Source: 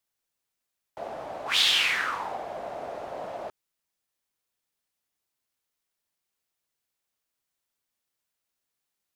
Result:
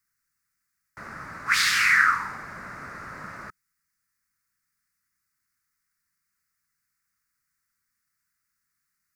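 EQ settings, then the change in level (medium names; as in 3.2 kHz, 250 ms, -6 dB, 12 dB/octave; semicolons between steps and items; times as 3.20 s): FFT filter 180 Hz 0 dB, 720 Hz -26 dB, 1.3 kHz +4 dB, 2 kHz +3 dB, 3.2 kHz -20 dB, 4.8 kHz -3 dB; +7.5 dB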